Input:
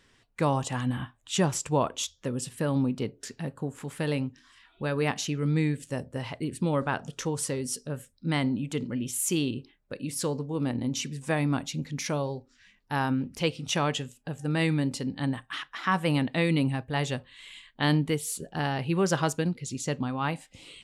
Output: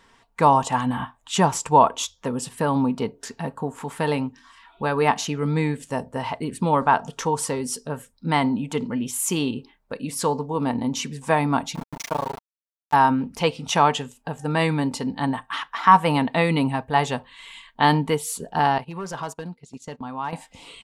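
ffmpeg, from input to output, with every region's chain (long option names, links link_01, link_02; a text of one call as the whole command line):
ffmpeg -i in.wav -filter_complex "[0:a]asettb=1/sr,asplit=3[link_01][link_02][link_03];[link_01]atrim=end=11.754[link_04];[link_02]atrim=start=11.75:end=12.94,asetpts=PTS-STARTPTS,afade=type=in:duration=0.004:curve=qsin,afade=type=out:start_time=1.186:duration=0.004:curve=qsin,asubboost=boost=8:cutoff=77,tremolo=f=27:d=0.974,aeval=exprs='val(0)*gte(abs(val(0)),0.0133)':channel_layout=same[link_05];[link_03]atrim=start=12.936[link_06];[link_04][link_05]acrossfade=duration=0.004:curve1=hsin:curve2=qsin[link_07];[link_07][link_06]acrossfade=duration=0.004:curve1=qsin:curve2=hsin,asettb=1/sr,asplit=3[link_08][link_09][link_10];[link_08]atrim=end=18.784[link_11];[link_09]atrim=start=18.78:end=20.33,asetpts=PTS-STARTPTS,afade=type=in:duration=0.004:curve=qsin,afade=type=out:start_time=1.546:duration=0.004:curve=qsin,agate=range=-19dB:threshold=-34dB:ratio=16:release=100:detection=peak,asoftclip=type=hard:threshold=-20dB,acompressor=threshold=-40dB:ratio=2.5:attack=3.2:release=140:knee=1:detection=peak[link_12];[link_10]atrim=start=20.326[link_13];[link_11][link_12]acrossfade=duration=0.004:curve1=hsin:curve2=qsin[link_14];[link_14][link_13]acrossfade=duration=0.004:curve1=qsin:curve2=hsin,equalizer=frequency=920:width_type=o:width=0.84:gain=13,aecho=1:1:4.4:0.34,volume=3dB" out.wav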